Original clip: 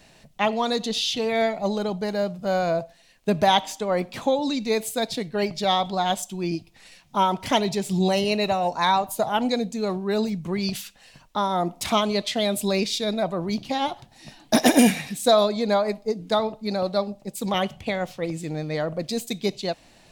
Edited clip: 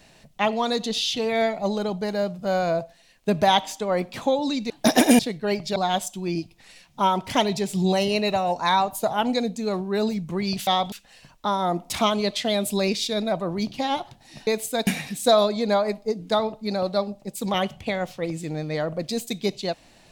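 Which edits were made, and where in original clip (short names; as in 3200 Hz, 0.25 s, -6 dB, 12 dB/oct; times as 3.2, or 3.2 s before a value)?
4.7–5.1 swap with 14.38–14.87
5.67–5.92 move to 10.83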